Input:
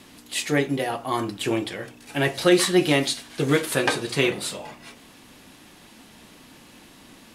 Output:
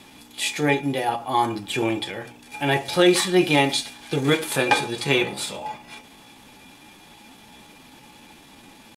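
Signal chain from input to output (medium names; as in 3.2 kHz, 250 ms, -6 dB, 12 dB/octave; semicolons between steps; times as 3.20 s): tempo 0.82×; small resonant body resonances 840/2400/3400 Hz, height 15 dB, ringing for 85 ms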